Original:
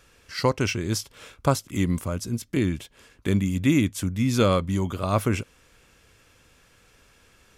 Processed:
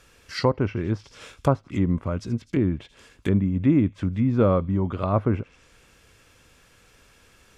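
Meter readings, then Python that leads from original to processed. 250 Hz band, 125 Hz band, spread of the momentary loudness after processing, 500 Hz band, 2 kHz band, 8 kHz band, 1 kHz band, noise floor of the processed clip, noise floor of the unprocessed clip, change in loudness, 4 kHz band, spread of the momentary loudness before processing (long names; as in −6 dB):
+1.5 dB, +1.5 dB, 9 LU, +1.5 dB, −5.5 dB, below −15 dB, −1.0 dB, −57 dBFS, −59 dBFS, +1.0 dB, can't be measured, 9 LU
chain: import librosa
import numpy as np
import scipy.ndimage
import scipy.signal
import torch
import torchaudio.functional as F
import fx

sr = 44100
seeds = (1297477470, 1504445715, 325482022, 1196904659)

y = fx.echo_wet_highpass(x, sr, ms=83, feedback_pct=47, hz=2900.0, wet_db=-17.5)
y = fx.env_lowpass_down(y, sr, base_hz=1100.0, full_db=-21.0)
y = F.gain(torch.from_numpy(y), 1.5).numpy()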